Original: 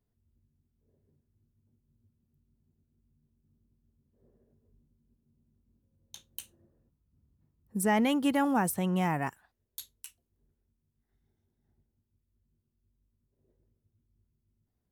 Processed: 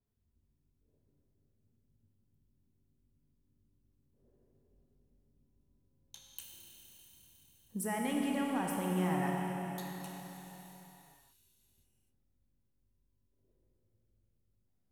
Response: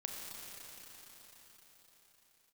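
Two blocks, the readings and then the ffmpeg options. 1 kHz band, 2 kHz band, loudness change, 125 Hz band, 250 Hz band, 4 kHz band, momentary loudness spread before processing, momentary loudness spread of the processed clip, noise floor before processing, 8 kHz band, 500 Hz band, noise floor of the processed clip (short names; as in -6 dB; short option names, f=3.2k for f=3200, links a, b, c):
-6.0 dB, -6.5 dB, -7.5 dB, -3.0 dB, -5.5 dB, -5.5 dB, 19 LU, 20 LU, -81 dBFS, -5.5 dB, -5.5 dB, -77 dBFS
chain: -filter_complex "[0:a]acompressor=threshold=-28dB:ratio=6[a];[1:a]atrim=start_sample=2205,asetrate=52920,aresample=44100[b];[a][b]afir=irnorm=-1:irlink=0,adynamicequalizer=threshold=0.00126:dfrequency=6500:dqfactor=0.7:tfrequency=6500:tqfactor=0.7:attack=5:release=100:ratio=0.375:range=2.5:mode=cutabove:tftype=highshelf"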